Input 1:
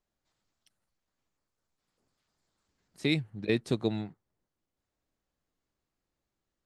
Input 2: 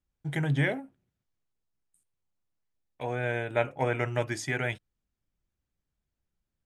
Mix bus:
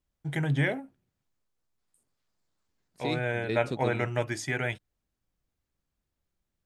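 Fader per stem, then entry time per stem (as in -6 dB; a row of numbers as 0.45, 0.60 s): -5.0, 0.0 dB; 0.00, 0.00 s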